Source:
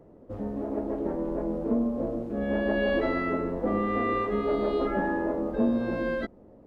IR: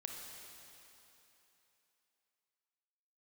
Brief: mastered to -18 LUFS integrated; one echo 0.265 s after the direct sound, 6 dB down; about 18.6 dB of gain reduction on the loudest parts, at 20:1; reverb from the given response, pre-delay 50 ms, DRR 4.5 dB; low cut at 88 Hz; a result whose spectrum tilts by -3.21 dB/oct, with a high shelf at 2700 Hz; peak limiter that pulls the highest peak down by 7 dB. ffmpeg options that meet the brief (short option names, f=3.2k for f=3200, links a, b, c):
-filter_complex "[0:a]highpass=88,highshelf=f=2.7k:g=3,acompressor=threshold=-40dB:ratio=20,alimiter=level_in=15dB:limit=-24dB:level=0:latency=1,volume=-15dB,aecho=1:1:265:0.501,asplit=2[a][b];[1:a]atrim=start_sample=2205,adelay=50[c];[b][c]afir=irnorm=-1:irlink=0,volume=-2.5dB[d];[a][d]amix=inputs=2:normalize=0,volume=27.5dB"